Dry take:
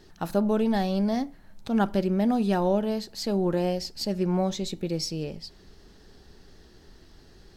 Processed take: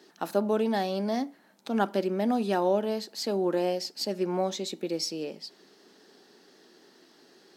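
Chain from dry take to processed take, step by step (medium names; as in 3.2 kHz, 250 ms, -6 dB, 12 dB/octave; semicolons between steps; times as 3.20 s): high-pass 240 Hz 24 dB/octave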